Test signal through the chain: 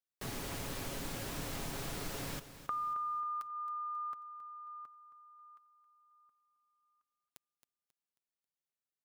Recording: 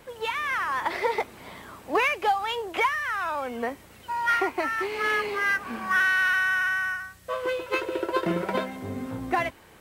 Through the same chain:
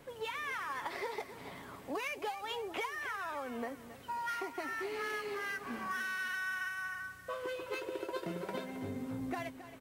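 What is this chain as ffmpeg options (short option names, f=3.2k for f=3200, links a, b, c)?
-filter_complex "[0:a]equalizer=f=220:t=o:w=2.9:g=4,aecho=1:1:7.2:0.32,acrossover=split=3900[a][b];[a]acompressor=threshold=-29dB:ratio=6[c];[c][b]amix=inputs=2:normalize=0,aecho=1:1:270|540|810|1080:0.224|0.0873|0.0341|0.0133,volume=-7.5dB"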